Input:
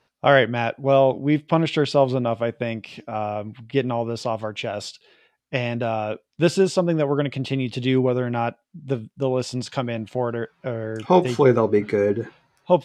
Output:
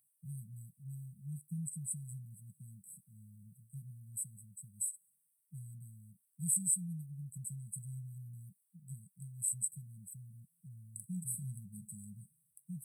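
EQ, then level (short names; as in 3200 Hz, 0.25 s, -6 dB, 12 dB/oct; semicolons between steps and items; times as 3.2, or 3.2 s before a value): brick-wall FIR band-stop 200–7800 Hz; differentiator; high shelf 7000 Hz -9 dB; +17.0 dB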